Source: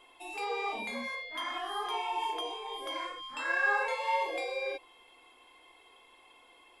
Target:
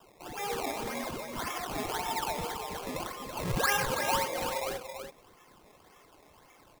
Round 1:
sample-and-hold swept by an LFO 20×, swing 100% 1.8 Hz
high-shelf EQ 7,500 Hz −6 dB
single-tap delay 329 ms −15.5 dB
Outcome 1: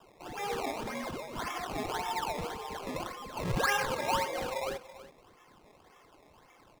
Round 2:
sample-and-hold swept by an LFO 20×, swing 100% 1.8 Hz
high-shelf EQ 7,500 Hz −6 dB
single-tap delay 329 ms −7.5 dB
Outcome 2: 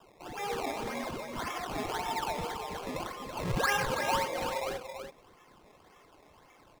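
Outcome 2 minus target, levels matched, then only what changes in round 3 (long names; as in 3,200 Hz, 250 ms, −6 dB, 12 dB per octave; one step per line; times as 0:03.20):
8,000 Hz band −4.0 dB
change: high-shelf EQ 7,500 Hz +3.5 dB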